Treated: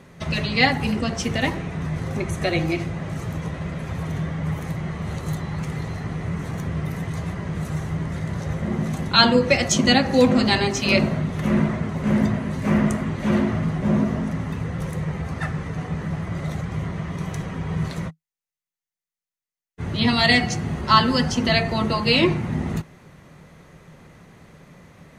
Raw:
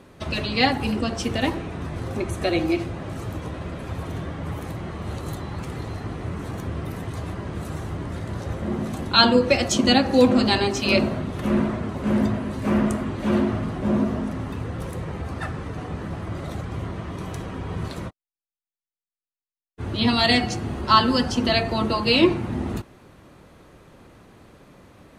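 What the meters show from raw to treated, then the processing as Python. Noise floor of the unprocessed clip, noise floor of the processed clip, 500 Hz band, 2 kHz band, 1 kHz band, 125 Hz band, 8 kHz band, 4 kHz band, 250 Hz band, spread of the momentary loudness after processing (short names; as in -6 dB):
under -85 dBFS, under -85 dBFS, -0.5 dB, +3.5 dB, 0.0 dB, +4.5 dB, +3.5 dB, +0.5 dB, +1.0 dB, 12 LU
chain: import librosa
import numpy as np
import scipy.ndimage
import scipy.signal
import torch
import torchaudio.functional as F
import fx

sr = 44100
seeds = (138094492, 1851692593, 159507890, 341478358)

y = fx.graphic_eq_31(x, sr, hz=(160, 315, 2000, 6300), db=(11, -5, 7, 5))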